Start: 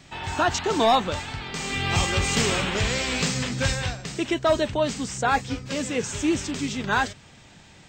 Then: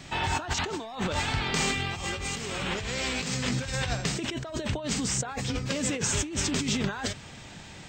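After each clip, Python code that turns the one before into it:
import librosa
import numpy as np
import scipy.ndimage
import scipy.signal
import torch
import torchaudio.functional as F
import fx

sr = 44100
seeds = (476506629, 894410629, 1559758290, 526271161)

y = fx.over_compress(x, sr, threshold_db=-31.0, ratio=-1.0)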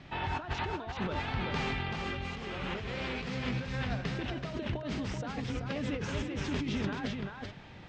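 y = fx.air_absorb(x, sr, metres=260.0)
y = y + 10.0 ** (-4.5 / 20.0) * np.pad(y, (int(383 * sr / 1000.0), 0))[:len(y)]
y = y * 10.0 ** (-4.5 / 20.0)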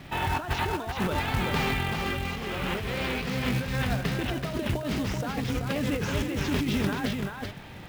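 y = fx.quant_float(x, sr, bits=2)
y = y * 10.0 ** (6.5 / 20.0)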